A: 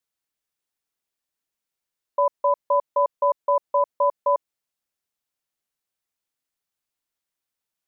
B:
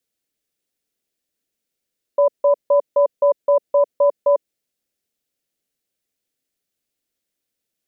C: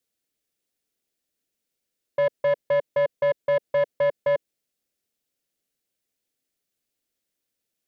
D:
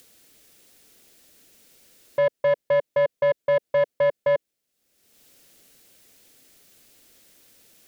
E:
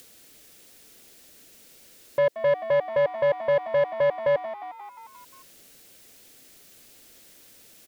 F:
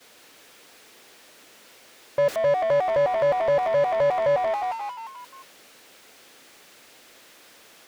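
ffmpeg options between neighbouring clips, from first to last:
-af "equalizer=f=250:t=o:w=1:g=5,equalizer=f=500:t=o:w=1:g=6,equalizer=f=1k:t=o:w=1:g=-11,volume=5dB"
-af "asoftclip=type=tanh:threshold=-16dB,volume=-1.5dB"
-af "acompressor=mode=upward:threshold=-37dB:ratio=2.5,volume=1.5dB"
-filter_complex "[0:a]asplit=7[a][b][c][d][e][f][g];[b]adelay=177,afreqshift=83,volume=-18dB[h];[c]adelay=354,afreqshift=166,volume=-22dB[i];[d]adelay=531,afreqshift=249,volume=-26dB[j];[e]adelay=708,afreqshift=332,volume=-30dB[k];[f]adelay=885,afreqshift=415,volume=-34.1dB[l];[g]adelay=1062,afreqshift=498,volume=-38.1dB[m];[a][h][i][j][k][l][m]amix=inputs=7:normalize=0,alimiter=limit=-20.5dB:level=0:latency=1:release=15,volume=3.5dB"
-filter_complex "[0:a]aeval=exprs='val(0)+0.5*0.0168*sgn(val(0))':c=same,agate=range=-33dB:threshold=-30dB:ratio=3:detection=peak,asplit=2[a][b];[b]highpass=f=720:p=1,volume=21dB,asoftclip=type=tanh:threshold=-16dB[c];[a][c]amix=inputs=2:normalize=0,lowpass=f=1.8k:p=1,volume=-6dB"

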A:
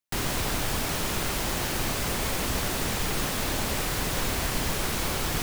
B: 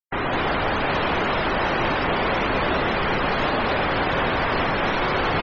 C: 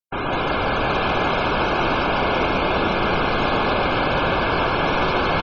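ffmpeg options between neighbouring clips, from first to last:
-filter_complex "[0:a]asplit=2[a][b];[b]highpass=f=720:p=1,volume=28dB,asoftclip=type=tanh:threshold=-14dB[c];[a][c]amix=inputs=2:normalize=0,lowpass=f=1.2k:p=1,volume=-6dB,aecho=1:1:43|84|209|335|765:0.119|0.211|0.668|0.1|0.398,afftfilt=real='re*gte(hypot(re,im),0.0447)':imag='im*gte(hypot(re,im),0.0447)':win_size=1024:overlap=0.75,volume=2.5dB"
-filter_complex "[0:a]asuperstop=centerf=1900:order=12:qfactor=5.4,asplit=2[a][b];[b]aecho=0:1:142|508|814:0.668|0.501|0.141[c];[a][c]amix=inputs=2:normalize=0"

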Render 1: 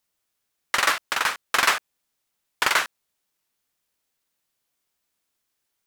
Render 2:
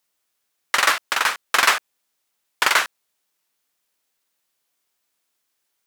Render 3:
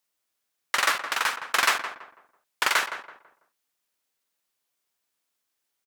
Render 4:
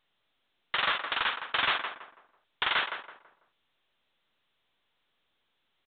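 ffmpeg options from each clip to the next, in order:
-af "lowshelf=f=170:g=-11,volume=3.5dB"
-filter_complex "[0:a]asplit=2[a][b];[b]adelay=165,lowpass=f=1.5k:p=1,volume=-8dB,asplit=2[c][d];[d]adelay=165,lowpass=f=1.5k:p=1,volume=0.36,asplit=2[e][f];[f]adelay=165,lowpass=f=1.5k:p=1,volume=0.36,asplit=2[g][h];[h]adelay=165,lowpass=f=1.5k:p=1,volume=0.36[i];[a][c][e][g][i]amix=inputs=5:normalize=0,volume=-5.5dB"
-af "aexciter=amount=2.1:drive=5.6:freq=3.1k,volume=17dB,asoftclip=hard,volume=-17dB,volume=-2.5dB" -ar 8000 -c:a pcm_mulaw

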